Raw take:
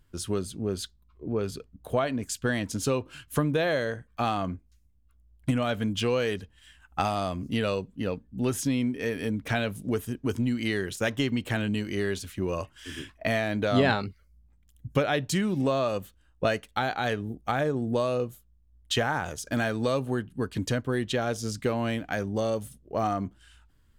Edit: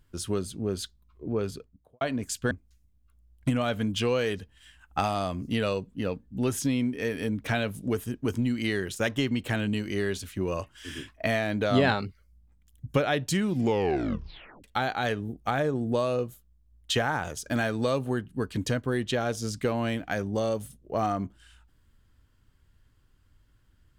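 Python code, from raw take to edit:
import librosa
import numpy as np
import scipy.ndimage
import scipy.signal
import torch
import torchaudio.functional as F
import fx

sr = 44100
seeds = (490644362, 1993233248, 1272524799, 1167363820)

y = fx.studio_fade_out(x, sr, start_s=1.41, length_s=0.6)
y = fx.edit(y, sr, fx.cut(start_s=2.51, length_s=2.01),
    fx.tape_stop(start_s=15.51, length_s=1.14), tone=tone)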